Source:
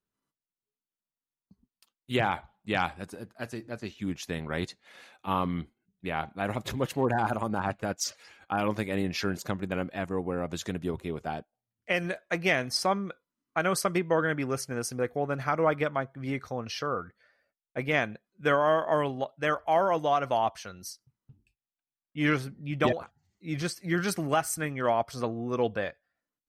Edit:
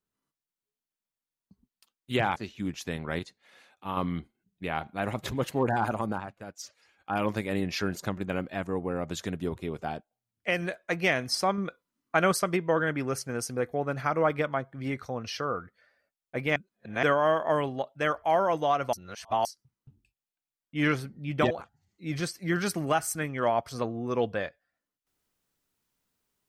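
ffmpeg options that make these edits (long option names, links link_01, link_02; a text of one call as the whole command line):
ffmpeg -i in.wav -filter_complex "[0:a]asplit=12[link_01][link_02][link_03][link_04][link_05][link_06][link_07][link_08][link_09][link_10][link_11][link_12];[link_01]atrim=end=2.362[link_13];[link_02]atrim=start=3.778:end=4.612[link_14];[link_03]atrim=start=4.608:end=5.392,asetpts=PTS-STARTPTS,volume=-5.5dB[link_15];[link_04]atrim=start=5.388:end=7.68,asetpts=PTS-STARTPTS,afade=type=out:start_time=2.132:duration=0.16:silence=0.281838[link_16];[link_05]atrim=start=7.68:end=8.42,asetpts=PTS-STARTPTS,volume=-11dB[link_17];[link_06]atrim=start=8.42:end=13.002,asetpts=PTS-STARTPTS,afade=type=in:duration=0.16:silence=0.281838[link_18];[link_07]atrim=start=12.998:end=13.742,asetpts=PTS-STARTPTS,volume=3.5dB[link_19];[link_08]atrim=start=13.738:end=17.982[link_20];[link_09]atrim=start=17.978:end=18.452,asetpts=PTS-STARTPTS,areverse[link_21];[link_10]atrim=start=18.448:end=20.352[link_22];[link_11]atrim=start=20.348:end=20.872,asetpts=PTS-STARTPTS,areverse[link_23];[link_12]atrim=start=20.868[link_24];[link_13][link_14]acrossfade=duration=0.004:curve1=hsin:curve2=hsin[link_25];[link_25][link_15]acrossfade=duration=0.004:curve1=hsin:curve2=hsin[link_26];[link_16][link_17][link_18]concat=n=3:v=0:a=1[link_27];[link_26][link_27]acrossfade=duration=0.004:curve1=hsin:curve2=hsin[link_28];[link_28][link_19]acrossfade=duration=0.004:curve1=hsin:curve2=hsin[link_29];[link_29][link_20]acrossfade=duration=0.004:curve1=hsin:curve2=hsin[link_30];[link_30][link_21]acrossfade=duration=0.004:curve1=hsin:curve2=hsin[link_31];[link_31][link_22]acrossfade=duration=0.004:curve1=hsin:curve2=hsin[link_32];[link_32][link_23]acrossfade=duration=0.004:curve1=hsin:curve2=hsin[link_33];[link_33][link_24]acrossfade=duration=0.004:curve1=hsin:curve2=hsin" out.wav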